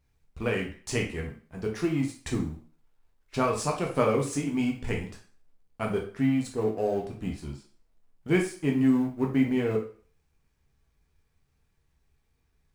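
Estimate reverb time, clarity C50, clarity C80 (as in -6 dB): 0.45 s, 7.5 dB, 13.0 dB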